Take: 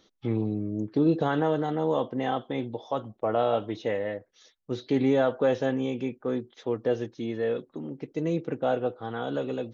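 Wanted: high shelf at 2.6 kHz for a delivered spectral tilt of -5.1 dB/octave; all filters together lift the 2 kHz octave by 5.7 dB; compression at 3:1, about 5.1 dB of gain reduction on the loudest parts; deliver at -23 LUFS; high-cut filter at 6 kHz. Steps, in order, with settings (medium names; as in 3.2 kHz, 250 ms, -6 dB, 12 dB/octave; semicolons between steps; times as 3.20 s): low-pass 6 kHz; peaking EQ 2 kHz +5 dB; treble shelf 2.6 kHz +6 dB; compression 3:1, threshold -25 dBFS; trim +8 dB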